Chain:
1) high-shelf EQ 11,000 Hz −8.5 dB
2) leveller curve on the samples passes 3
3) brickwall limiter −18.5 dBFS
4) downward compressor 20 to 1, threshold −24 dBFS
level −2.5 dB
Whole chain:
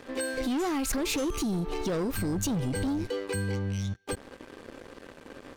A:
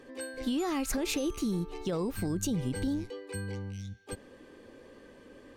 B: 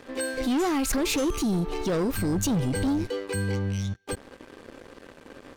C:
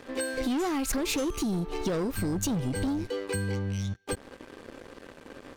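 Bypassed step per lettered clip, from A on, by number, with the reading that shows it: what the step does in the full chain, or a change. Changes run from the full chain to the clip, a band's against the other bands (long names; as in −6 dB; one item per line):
2, change in crest factor +4.0 dB
4, average gain reduction 2.0 dB
3, average gain reduction 2.5 dB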